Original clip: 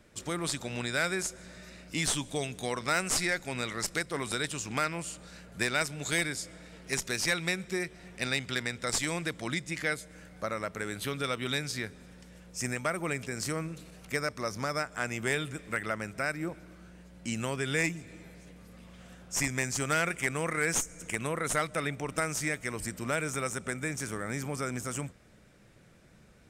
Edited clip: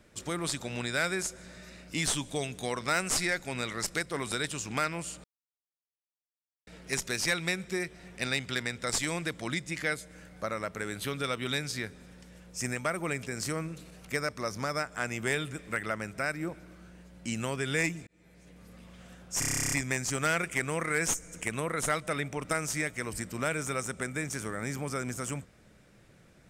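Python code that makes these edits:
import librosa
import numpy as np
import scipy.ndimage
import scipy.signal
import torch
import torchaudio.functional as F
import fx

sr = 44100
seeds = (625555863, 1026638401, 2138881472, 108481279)

y = fx.edit(x, sr, fx.silence(start_s=5.24, length_s=1.43),
    fx.fade_in_span(start_s=18.07, length_s=0.61),
    fx.stutter(start_s=19.39, slice_s=0.03, count=12), tone=tone)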